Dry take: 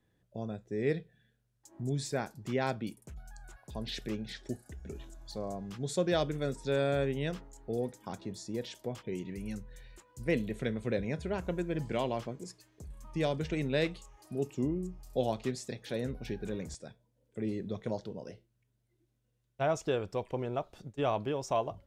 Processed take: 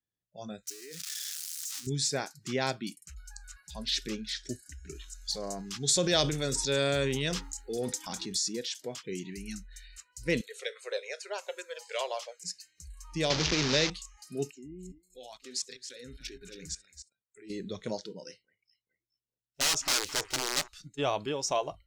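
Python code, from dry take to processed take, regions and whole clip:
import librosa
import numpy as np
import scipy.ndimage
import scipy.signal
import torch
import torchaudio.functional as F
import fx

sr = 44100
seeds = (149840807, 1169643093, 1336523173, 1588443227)

y = fx.chain(x, sr, fx.crossing_spikes(level_db=-26.5),
    fx.peak_eq(hz=110.0, db=-12.0, octaves=0.65),
    fx.level_steps(step_db=23), at=(0.67, 1.87))
y = fx.chain(y, sr, fx.high_shelf(hz=2600.0, db=4.0),
    fx.transient(attack_db=0, sustain_db=8), at=(5.08, 8.53))
y = fx.chain(y, sr, fx.steep_highpass(hz=460.0, slope=36),
    fx.filter_lfo_notch(shape='saw_down', hz=2.5, low_hz=740.0, high_hz=3800.0, q=2.8), at=(10.41, 12.45))
y = fx.chain(y, sr, fx.delta_mod(bps=32000, step_db=-29.0),
    fx.band_squash(depth_pct=70), at=(13.3, 13.9))
y = fx.chain(y, sr, fx.level_steps(step_db=22),
    fx.echo_single(ms=274, db=-10.0), at=(14.51, 17.5))
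y = fx.chain(y, sr, fx.overflow_wrap(gain_db=28.5),
    fx.echo_alternate(ms=213, hz=2200.0, feedback_pct=62, wet_db=-13.5), at=(18.23, 20.68))
y = fx.noise_reduce_blind(y, sr, reduce_db=24)
y = fx.peak_eq(y, sr, hz=5700.0, db=13.5, octaves=1.9)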